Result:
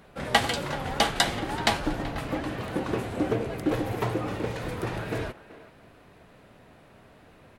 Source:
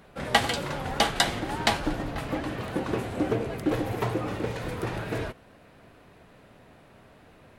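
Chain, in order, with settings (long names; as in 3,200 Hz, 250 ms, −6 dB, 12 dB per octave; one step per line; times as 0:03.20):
far-end echo of a speakerphone 380 ms, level −16 dB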